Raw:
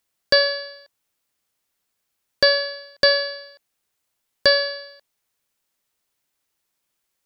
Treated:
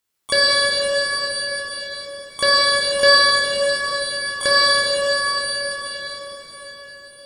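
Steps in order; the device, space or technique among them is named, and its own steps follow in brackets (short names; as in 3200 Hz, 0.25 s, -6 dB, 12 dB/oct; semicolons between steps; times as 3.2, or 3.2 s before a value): bell 630 Hz -3 dB 0.62 oct; shimmer-style reverb (harmoniser +12 st -9 dB; reverb RT60 5.9 s, pre-delay 14 ms, DRR -8 dB); gain -3.5 dB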